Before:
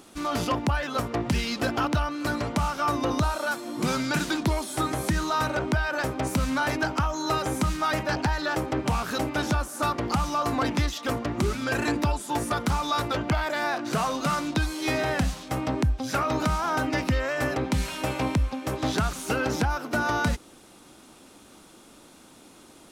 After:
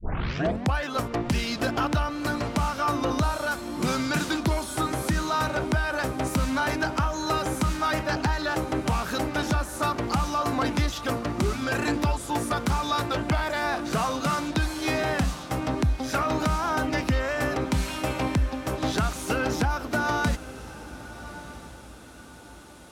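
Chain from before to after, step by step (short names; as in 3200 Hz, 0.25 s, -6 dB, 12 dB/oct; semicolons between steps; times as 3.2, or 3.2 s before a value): tape start at the beginning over 0.75 s; diffused feedback echo 1.205 s, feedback 41%, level -15 dB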